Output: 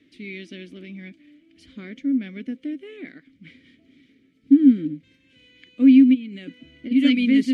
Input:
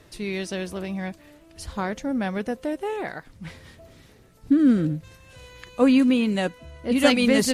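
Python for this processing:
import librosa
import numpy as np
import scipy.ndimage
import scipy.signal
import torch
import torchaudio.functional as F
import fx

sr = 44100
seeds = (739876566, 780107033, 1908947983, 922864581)

y = fx.over_compress(x, sr, threshold_db=-29.0, ratio=-1.0, at=(6.13, 6.9), fade=0.02)
y = fx.vowel_filter(y, sr, vowel='i')
y = y * librosa.db_to_amplitude(7.0)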